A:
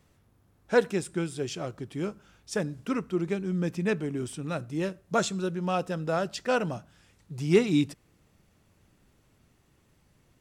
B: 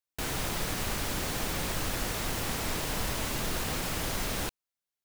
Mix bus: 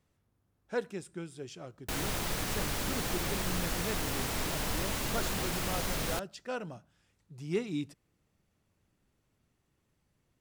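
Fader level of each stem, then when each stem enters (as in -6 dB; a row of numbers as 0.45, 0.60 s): -11.0, -1.5 dB; 0.00, 1.70 s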